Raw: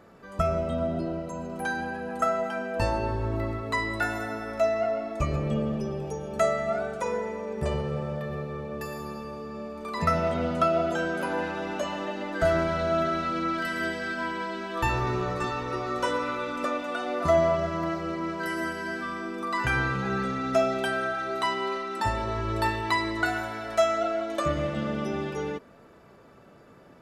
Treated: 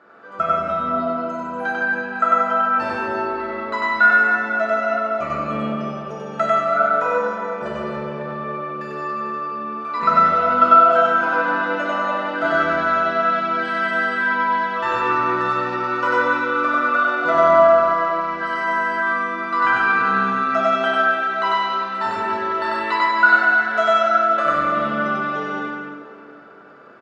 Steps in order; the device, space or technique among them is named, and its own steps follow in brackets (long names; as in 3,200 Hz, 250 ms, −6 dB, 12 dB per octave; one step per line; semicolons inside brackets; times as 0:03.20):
station announcement (band-pass filter 300–3,900 Hz; parametric band 1,400 Hz +11.5 dB 0.41 octaves; loudspeakers that aren't time-aligned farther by 33 metres 0 dB, 97 metres −11 dB; convolution reverb RT60 2.2 s, pre-delay 3 ms, DRR −2.5 dB)
level −1 dB